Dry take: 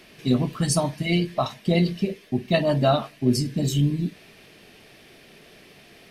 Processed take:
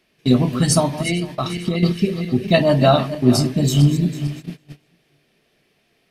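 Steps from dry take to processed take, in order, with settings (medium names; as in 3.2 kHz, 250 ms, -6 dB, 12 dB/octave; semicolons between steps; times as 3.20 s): backward echo that repeats 225 ms, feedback 54%, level -11 dB; 1.37–2.43 s: time-frequency box 500–1100 Hz -7 dB; 0.86–1.83 s: compression 6:1, threshold -24 dBFS, peak gain reduction 8.5 dB; gate -36 dBFS, range -20 dB; trim +6 dB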